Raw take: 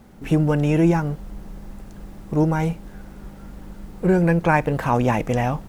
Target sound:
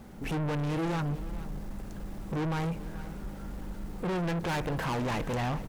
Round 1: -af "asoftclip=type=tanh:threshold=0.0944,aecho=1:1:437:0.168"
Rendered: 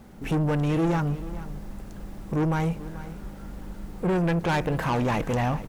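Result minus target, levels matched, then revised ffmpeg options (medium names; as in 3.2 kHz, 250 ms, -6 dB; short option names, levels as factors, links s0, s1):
saturation: distortion -5 dB
-af "asoftclip=type=tanh:threshold=0.0355,aecho=1:1:437:0.168"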